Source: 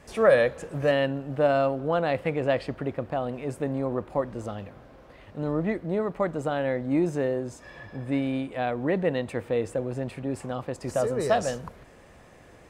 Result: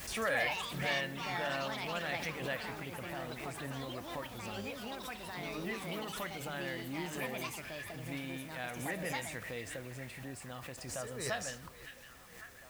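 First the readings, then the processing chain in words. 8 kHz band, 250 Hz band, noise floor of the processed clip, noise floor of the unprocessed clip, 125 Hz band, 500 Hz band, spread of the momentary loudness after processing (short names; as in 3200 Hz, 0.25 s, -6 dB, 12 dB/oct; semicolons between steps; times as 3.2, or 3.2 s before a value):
+1.0 dB, -14.0 dB, -54 dBFS, -52 dBFS, -12.0 dB, -16.5 dB, 11 LU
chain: passive tone stack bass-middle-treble 5-5-5; de-hum 147.5 Hz, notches 37; dynamic EQ 1800 Hz, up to +5 dB, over -56 dBFS, Q 2.3; in parallel at -1 dB: compressor, threshold -53 dBFS, peak gain reduction 20.5 dB; on the sum: added noise white -62 dBFS; on a send: delay with a stepping band-pass 0.553 s, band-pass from 2500 Hz, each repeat -0.7 oct, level -8 dB; on the sum: echoes that change speed 0.159 s, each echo +4 st, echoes 3; backwards sustainer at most 59 dB/s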